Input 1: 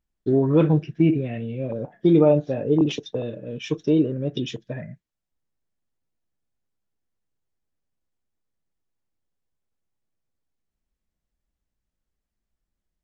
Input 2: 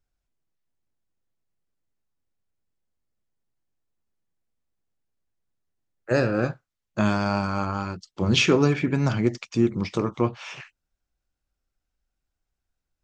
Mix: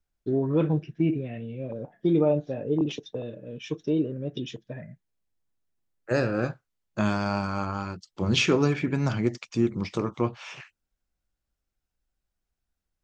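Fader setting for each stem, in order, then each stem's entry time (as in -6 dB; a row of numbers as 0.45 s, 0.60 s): -6.0 dB, -3.0 dB; 0.00 s, 0.00 s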